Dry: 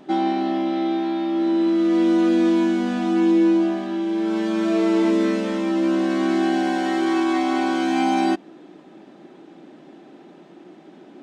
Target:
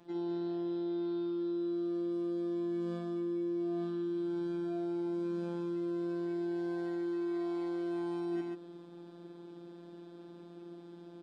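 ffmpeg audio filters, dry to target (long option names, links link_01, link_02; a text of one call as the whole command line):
ffmpeg -i in.wav -filter_complex "[0:a]acrossover=split=250|1500[link_01][link_02][link_03];[link_01]acompressor=threshold=-33dB:ratio=4[link_04];[link_02]acompressor=threshold=-20dB:ratio=4[link_05];[link_03]acompressor=threshold=-44dB:ratio=4[link_06];[link_04][link_05][link_06]amix=inputs=3:normalize=0,afftfilt=real='hypot(re,im)*cos(PI*b)':imag='0':win_size=1024:overlap=0.75,aecho=1:1:52.48|192.4:0.891|0.447,areverse,acompressor=threshold=-25dB:ratio=12,areverse,volume=-7.5dB" out.wav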